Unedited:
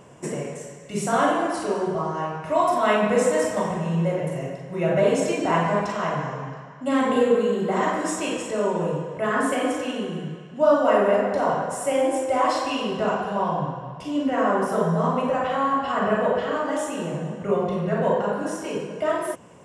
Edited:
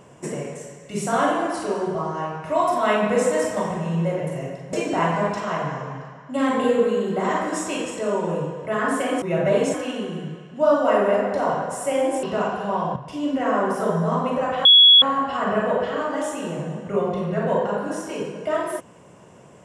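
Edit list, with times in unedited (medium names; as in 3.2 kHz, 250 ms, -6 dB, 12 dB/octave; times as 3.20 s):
4.73–5.25 s: move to 9.74 s
12.23–12.90 s: delete
13.63–13.88 s: delete
15.57 s: add tone 3.36 kHz -7.5 dBFS 0.37 s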